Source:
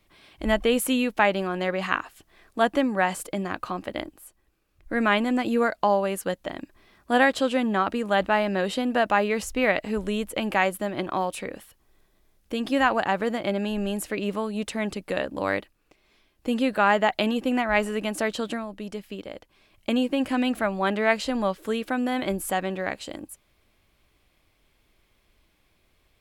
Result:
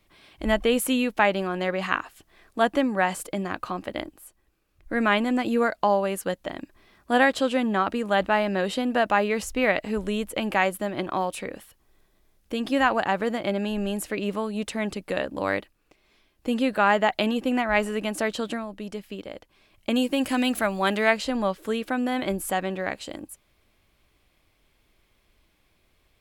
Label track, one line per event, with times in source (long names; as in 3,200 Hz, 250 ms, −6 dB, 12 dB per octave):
19.940000	21.090000	high-shelf EQ 5,000 Hz → 3,200 Hz +11.5 dB